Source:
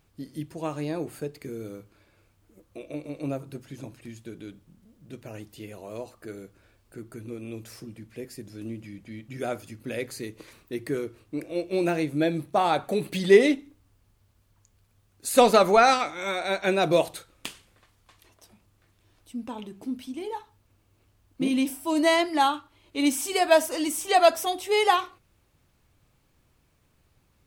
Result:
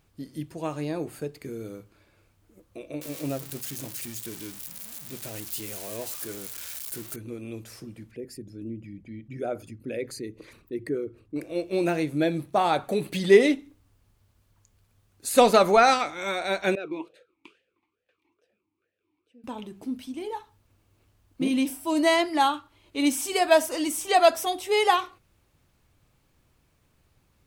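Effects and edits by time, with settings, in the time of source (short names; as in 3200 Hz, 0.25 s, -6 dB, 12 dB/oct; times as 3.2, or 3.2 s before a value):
3.01–7.16 switching spikes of -26.5 dBFS
8.11–11.36 formant sharpening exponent 1.5
16.75–19.44 vowel sweep e-u 2.3 Hz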